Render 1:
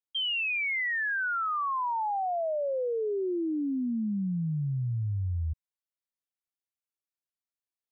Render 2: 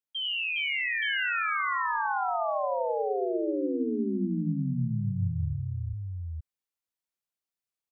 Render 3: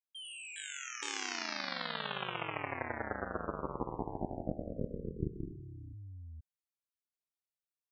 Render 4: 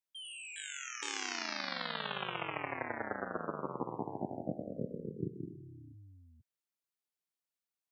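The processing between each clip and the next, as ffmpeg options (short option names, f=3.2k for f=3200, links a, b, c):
-af "aecho=1:1:62|92|161|410|873:0.335|0.501|0.119|0.668|0.708,volume=-2.5dB"
-af "aeval=exprs='0.119*(cos(1*acos(clip(val(0)/0.119,-1,1)))-cos(1*PI/2))+0.0531*(cos(3*acos(clip(val(0)/0.119,-1,1)))-cos(3*PI/2))':c=same,volume=-1dB"
-af "highpass=f=120:w=0.5412,highpass=f=120:w=1.3066"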